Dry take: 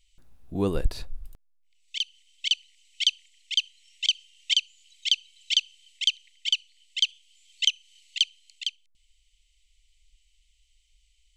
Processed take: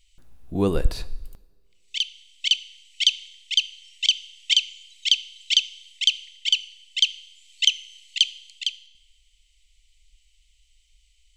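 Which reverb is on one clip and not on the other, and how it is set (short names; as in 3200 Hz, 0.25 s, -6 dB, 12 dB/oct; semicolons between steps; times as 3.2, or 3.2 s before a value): two-slope reverb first 0.84 s, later 2.3 s, from -20 dB, DRR 15.5 dB; gain +4 dB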